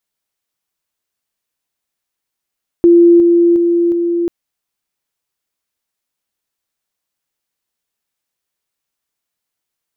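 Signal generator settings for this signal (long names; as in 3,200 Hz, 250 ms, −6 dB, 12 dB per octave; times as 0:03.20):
level staircase 343 Hz −3.5 dBFS, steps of −3 dB, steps 4, 0.36 s 0.00 s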